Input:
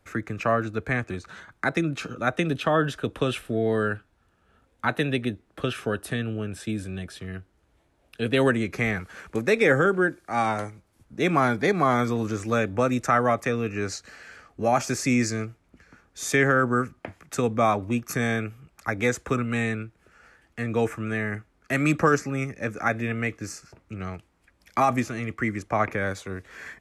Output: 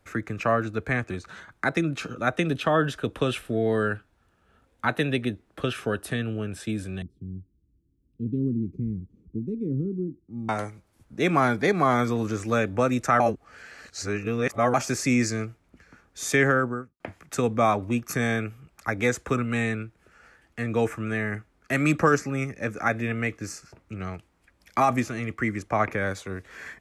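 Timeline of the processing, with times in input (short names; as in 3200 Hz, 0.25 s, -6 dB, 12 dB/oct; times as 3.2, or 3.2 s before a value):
7.02–10.49 inverse Chebyshev low-pass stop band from 610 Hz
13.2–14.74 reverse
16.46–17 studio fade out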